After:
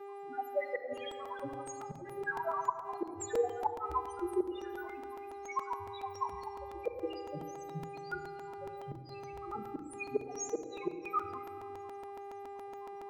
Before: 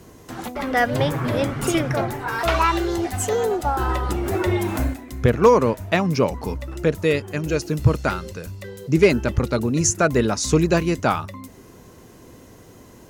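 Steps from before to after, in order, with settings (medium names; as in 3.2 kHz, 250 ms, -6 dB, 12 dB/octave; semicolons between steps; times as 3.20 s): random holes in the spectrogram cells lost 84%; high-pass 62 Hz 12 dB/octave; treble shelf 5.5 kHz +11.5 dB; loudest bins only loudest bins 2; mains buzz 400 Hz, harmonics 27, -49 dBFS -9 dB/octave; comb of notches 230 Hz; inverted gate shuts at -22 dBFS, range -27 dB; three-band isolator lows -17 dB, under 330 Hz, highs -12 dB, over 2.1 kHz; simulated room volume 3900 m³, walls mixed, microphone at 1.3 m; crackling interface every 0.14 s, samples 128, repeat, from 0.97 s; trim +3 dB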